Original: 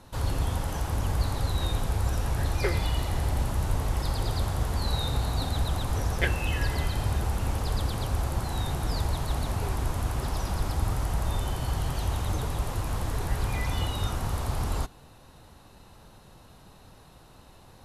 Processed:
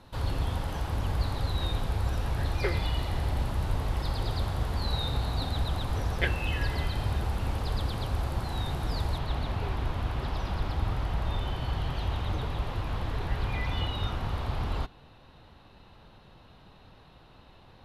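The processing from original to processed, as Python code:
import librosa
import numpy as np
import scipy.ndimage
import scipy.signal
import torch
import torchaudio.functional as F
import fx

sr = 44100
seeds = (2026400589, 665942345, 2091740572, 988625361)

y = fx.high_shelf_res(x, sr, hz=5200.0, db=fx.steps((0.0, -6.5), (9.17, -14.0)), q=1.5)
y = F.gain(torch.from_numpy(y), -2.0).numpy()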